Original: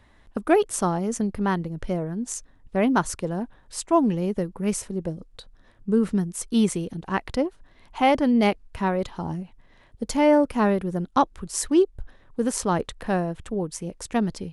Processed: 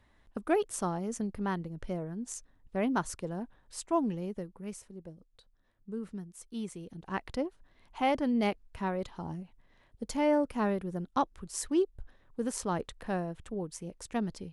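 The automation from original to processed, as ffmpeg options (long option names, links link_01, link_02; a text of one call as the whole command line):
ffmpeg -i in.wav -af "volume=-0.5dB,afade=type=out:start_time=3.92:duration=0.86:silence=0.375837,afade=type=in:start_time=6.73:duration=0.44:silence=0.375837" out.wav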